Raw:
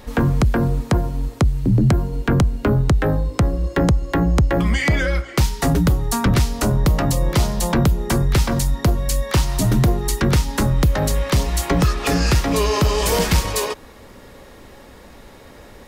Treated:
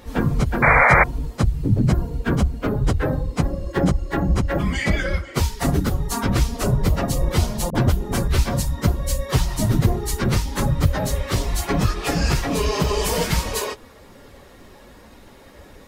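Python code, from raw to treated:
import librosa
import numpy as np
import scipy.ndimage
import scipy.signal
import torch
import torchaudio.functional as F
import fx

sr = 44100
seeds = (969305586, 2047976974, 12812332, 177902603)

y = fx.phase_scramble(x, sr, seeds[0], window_ms=50)
y = fx.spec_paint(y, sr, seeds[1], shape='noise', start_s=0.62, length_s=0.42, low_hz=440.0, high_hz=2400.0, level_db=-11.0)
y = fx.dispersion(y, sr, late='highs', ms=49.0, hz=410.0, at=(7.7, 8.28))
y = y * 10.0 ** (-3.0 / 20.0)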